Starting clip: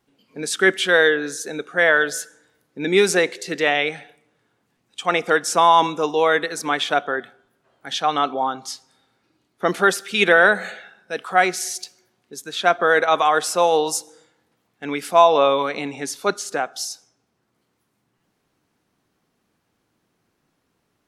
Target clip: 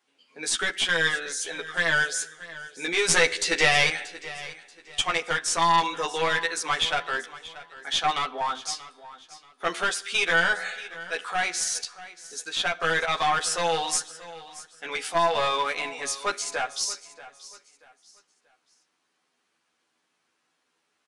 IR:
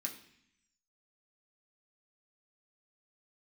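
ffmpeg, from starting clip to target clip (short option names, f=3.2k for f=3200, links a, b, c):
-filter_complex "[0:a]highpass=f=1.4k:p=1,highshelf=f=6k:g=-4,alimiter=limit=-14dB:level=0:latency=1:release=210,asettb=1/sr,asplit=3[a][b][c];[a]atrim=end=3.084[d];[b]atrim=start=3.08:end=5.03,asetpts=PTS-STARTPTS,afade=t=in:d=0.004:c=qsin,afade=t=out:st=1.946:d=0.004:c=qsin,acontrast=87[e];[c]atrim=start=5.026[f];[d][e]acrossfade=d=0.004:c1=hsin:c2=qsin[g];[g][f]acrossfade=d=0.004:c1=qsin:c2=hsin,aeval=exprs='clip(val(0),-1,0.0562)':c=same,asplit=2[h][i];[i]adelay=12,volume=-2dB[j];[h][j]amix=inputs=2:normalize=0,aecho=1:1:633|1266|1899:0.141|0.0438|0.0136,asplit=2[k][l];[1:a]atrim=start_sample=2205,asetrate=52920,aresample=44100[m];[l][m]afir=irnorm=-1:irlink=0,volume=-11.5dB[n];[k][n]amix=inputs=2:normalize=0,aresample=22050,aresample=44100"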